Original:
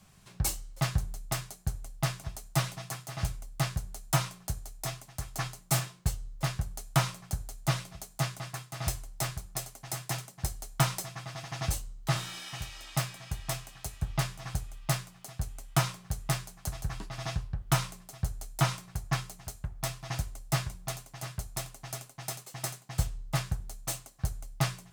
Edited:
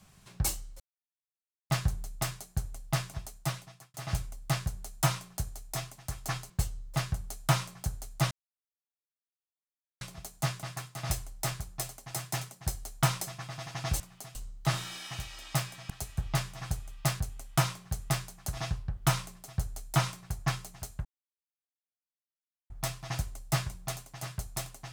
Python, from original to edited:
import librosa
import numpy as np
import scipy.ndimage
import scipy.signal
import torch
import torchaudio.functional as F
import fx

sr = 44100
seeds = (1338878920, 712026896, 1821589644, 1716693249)

y = fx.edit(x, sr, fx.insert_silence(at_s=0.8, length_s=0.9),
    fx.fade_out_span(start_s=2.25, length_s=0.79),
    fx.cut(start_s=5.6, length_s=0.37),
    fx.insert_silence(at_s=7.78, length_s=1.7),
    fx.cut(start_s=13.32, length_s=0.42),
    fx.move(start_s=15.04, length_s=0.35, to_s=11.77),
    fx.cut(start_s=16.76, length_s=0.46),
    fx.insert_silence(at_s=19.7, length_s=1.65), tone=tone)